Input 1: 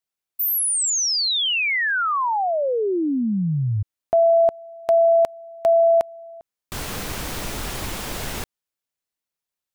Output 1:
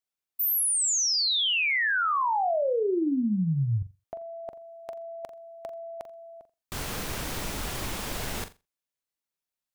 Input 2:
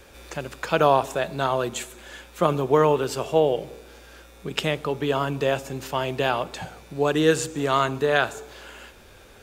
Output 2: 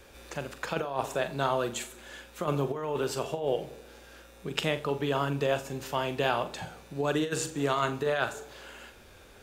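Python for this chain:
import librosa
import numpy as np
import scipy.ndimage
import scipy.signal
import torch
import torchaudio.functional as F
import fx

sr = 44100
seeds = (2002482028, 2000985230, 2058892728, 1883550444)

y = fx.over_compress(x, sr, threshold_db=-21.0, ratio=-0.5)
y = fx.room_flutter(y, sr, wall_m=7.3, rt60_s=0.24)
y = y * 10.0 ** (-6.0 / 20.0)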